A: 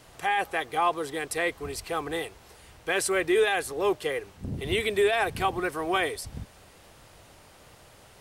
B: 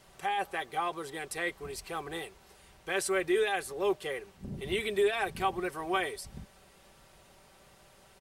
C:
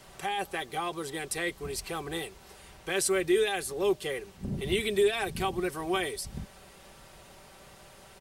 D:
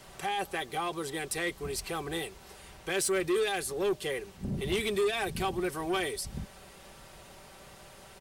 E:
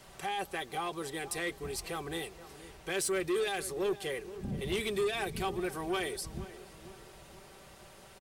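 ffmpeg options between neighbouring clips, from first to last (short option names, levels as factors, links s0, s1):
-af "aecho=1:1:5.2:0.49,volume=0.473"
-filter_complex "[0:a]acrossover=split=380|3000[s0][s1][s2];[s1]acompressor=threshold=0.002:ratio=1.5[s3];[s0][s3][s2]amix=inputs=3:normalize=0,volume=2.11"
-af "asoftclip=type=tanh:threshold=0.0596,volume=1.12"
-filter_complex "[0:a]asplit=2[s0][s1];[s1]adelay=479,lowpass=f=1500:p=1,volume=0.188,asplit=2[s2][s3];[s3]adelay=479,lowpass=f=1500:p=1,volume=0.53,asplit=2[s4][s5];[s5]adelay=479,lowpass=f=1500:p=1,volume=0.53,asplit=2[s6][s7];[s7]adelay=479,lowpass=f=1500:p=1,volume=0.53,asplit=2[s8][s9];[s9]adelay=479,lowpass=f=1500:p=1,volume=0.53[s10];[s0][s2][s4][s6][s8][s10]amix=inputs=6:normalize=0,volume=0.708"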